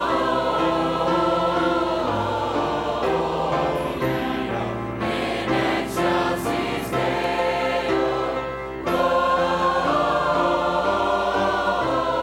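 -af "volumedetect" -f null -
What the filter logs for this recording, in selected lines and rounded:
mean_volume: -22.0 dB
max_volume: -8.3 dB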